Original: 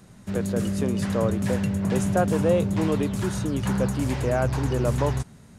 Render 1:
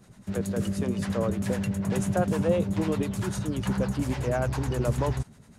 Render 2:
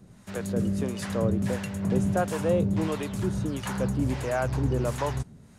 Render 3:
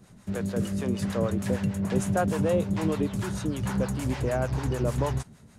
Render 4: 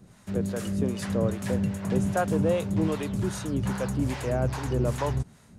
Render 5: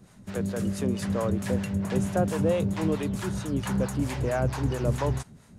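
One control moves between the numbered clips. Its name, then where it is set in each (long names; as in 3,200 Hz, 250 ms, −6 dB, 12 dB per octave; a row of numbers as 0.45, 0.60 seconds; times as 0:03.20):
two-band tremolo in antiphase, speed: 10, 1.5, 6.6, 2.5, 4.5 Hertz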